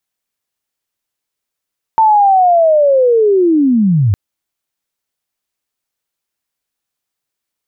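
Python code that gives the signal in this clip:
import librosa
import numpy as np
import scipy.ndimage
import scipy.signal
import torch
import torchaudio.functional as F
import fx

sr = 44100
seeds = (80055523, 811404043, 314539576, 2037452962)

y = fx.chirp(sr, length_s=2.16, from_hz=900.0, to_hz=91.0, law='linear', from_db=-5.5, to_db=-8.0)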